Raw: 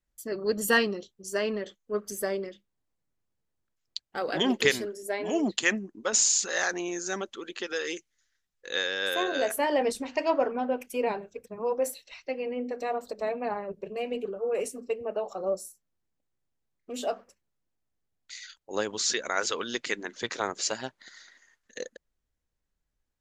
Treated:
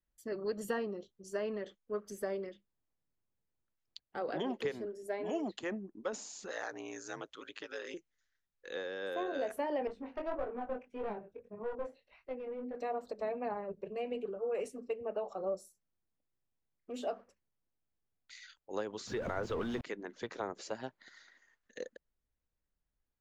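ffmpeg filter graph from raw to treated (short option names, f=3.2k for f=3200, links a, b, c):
-filter_complex "[0:a]asettb=1/sr,asplit=3[a][b][c];[a]atrim=end=6.514[d];[b]atrim=start=6.51:end=7.94,asetpts=PTS-STARTPTS,afade=t=in:d=0.004:c=qsin,afade=t=out:st=1.426:d=0.004:c=qsin,tiltshelf=f=770:g=-7.5,aeval=exprs='val(0)*sin(2*PI*56*n/s)':c=same[e];[c]atrim=start=7.936[f];[d][e]acrossfade=d=0.004:c1=hsin:c2=qsin[g];[g][f]acrossfade=d=0.004:c1=qsin:c2=hsin,asettb=1/sr,asplit=3[h][i][j];[h]atrim=end=9.874[k];[i]atrim=start=9.87:end=12.75,asetpts=PTS-STARTPTS,afade=t=in:d=0.004:c=qsin,afade=t=out:st=2.876:d=0.004:c=qsin,aeval=exprs='clip(val(0),-1,0.0335)':c=same,flanger=delay=18.5:depth=4.4:speed=1.7,adynamicsmooth=sensitivity=1.5:basefreq=2.1k[l];[j]atrim=start=12.746[m];[k][l]acrossfade=d=0.004:c1=hsin:c2=qsin[n];[n][m]acrossfade=d=0.004:c1=qsin:c2=hsin,asettb=1/sr,asplit=3[o][p][q];[o]atrim=end=19.074[r];[p]atrim=start=19.07:end=19.81,asetpts=PTS-STARTPTS,afade=t=in:d=0.004:c=qsin,afade=t=out:st=0.736:d=0.004:c=qsin,aeval=exprs='val(0)+0.5*0.0335*sgn(val(0))':c=same,bass=f=250:g=14,treble=f=4k:g=-7[s];[q]atrim=start=19.806[t];[r][s]acrossfade=d=0.004:c1=hsin:c2=qsin[u];[u][t]acrossfade=d=0.004:c1=qsin:c2=hsin,lowpass=f=2.5k:p=1,acrossover=split=490|1000[v][w][x];[v]acompressor=threshold=-34dB:ratio=4[y];[w]acompressor=threshold=-32dB:ratio=4[z];[x]acompressor=threshold=-43dB:ratio=4[aa];[y][z][aa]amix=inputs=3:normalize=0,volume=-4.5dB"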